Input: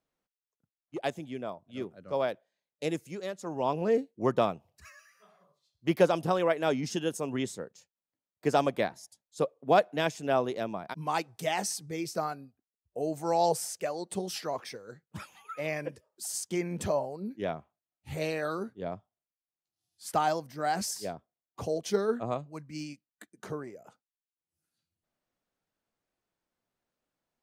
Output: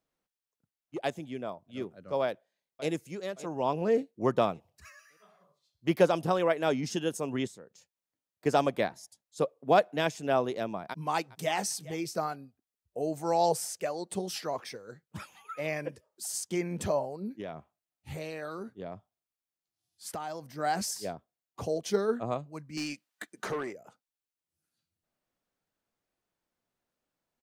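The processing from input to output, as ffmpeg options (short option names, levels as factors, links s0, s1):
-filter_complex "[0:a]asplit=2[s0][s1];[s1]afade=t=in:st=2.22:d=0.01,afade=t=out:st=2.89:d=0.01,aecho=0:1:570|1140|1710|2280:0.16788|0.0671522|0.0268609|0.0107443[s2];[s0][s2]amix=inputs=2:normalize=0,asettb=1/sr,asplit=3[s3][s4][s5];[s3]atrim=end=7.474[s6];[s4]atrim=start=7.47:end=8.46,asetpts=PTS-STARTPTS,afade=t=in:d=0.004:c=qsin,afade=t=out:st=0.986:d=0.004:c=qsin,acompressor=threshold=0.002:ratio=2:attack=3.2:release=140:knee=1:detection=peak[s7];[s5]atrim=start=8.456[s8];[s6][s7]acrossfade=d=0.004:c1=hsin:c2=qsin[s9];[s9][s8]acrossfade=d=0.004:c1=qsin:c2=hsin,asplit=2[s10][s11];[s11]afade=t=in:st=10.88:d=0.01,afade=t=out:st=11.53:d=0.01,aecho=0:1:410|820:0.141254|0.0211881[s12];[s10][s12]amix=inputs=2:normalize=0,asettb=1/sr,asplit=3[s13][s14][s15];[s13]atrim=end=17.404[s16];[s14]atrim=start=17.4:end=20.58,asetpts=PTS-STARTPTS,afade=t=in:d=0.004:c=qsin,afade=t=out:st=3.176:d=0.004:c=qsin,acompressor=threshold=0.0178:ratio=4:attack=3.2:release=140:knee=1:detection=peak[s17];[s15]atrim=start=20.576[s18];[s16][s17]acrossfade=d=0.004:c1=hsin:c2=qsin[s19];[s19][s18]acrossfade=d=0.004:c1=qsin:c2=hsin,asettb=1/sr,asplit=3[s20][s21][s22];[s20]atrim=end=22.774[s23];[s21]atrim=start=22.77:end=23.73,asetpts=PTS-STARTPTS,afade=t=in:d=0.004:c=qsin,afade=t=out:st=0.956:d=0.004:c=qsin,asplit=2[s24][s25];[s25]highpass=f=720:p=1,volume=8.91,asoftclip=type=tanh:threshold=0.0596[s26];[s24][s26]amix=inputs=2:normalize=0,lowpass=f=6100:p=1,volume=0.501[s27];[s22]atrim=start=23.726[s28];[s23][s27]acrossfade=d=0.004:c1=hsin:c2=qsin[s29];[s29][s28]acrossfade=d=0.004:c1=qsin:c2=hsin"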